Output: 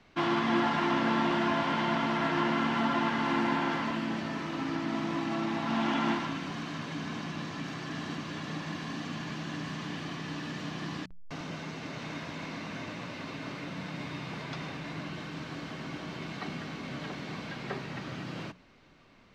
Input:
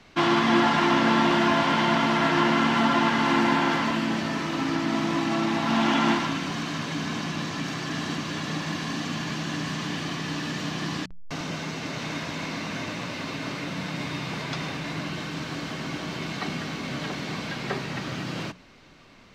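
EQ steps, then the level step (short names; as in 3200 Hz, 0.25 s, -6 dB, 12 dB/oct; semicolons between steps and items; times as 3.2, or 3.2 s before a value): high shelf 5000 Hz -8.5 dB; -6.5 dB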